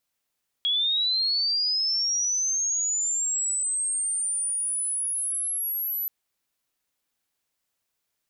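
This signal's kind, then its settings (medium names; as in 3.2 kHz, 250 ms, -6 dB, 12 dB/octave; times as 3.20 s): sweep linear 3.3 kHz -> 12 kHz -21 dBFS -> -26 dBFS 5.43 s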